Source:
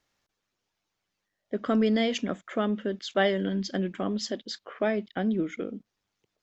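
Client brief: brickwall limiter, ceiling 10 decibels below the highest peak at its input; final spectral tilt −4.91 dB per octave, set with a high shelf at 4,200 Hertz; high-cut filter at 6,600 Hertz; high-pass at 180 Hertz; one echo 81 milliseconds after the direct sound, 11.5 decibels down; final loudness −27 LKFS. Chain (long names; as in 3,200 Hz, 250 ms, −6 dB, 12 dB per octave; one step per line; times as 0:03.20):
high-pass filter 180 Hz
low-pass filter 6,600 Hz
high-shelf EQ 4,200 Hz −8.5 dB
brickwall limiter −22 dBFS
single-tap delay 81 ms −11.5 dB
level +6 dB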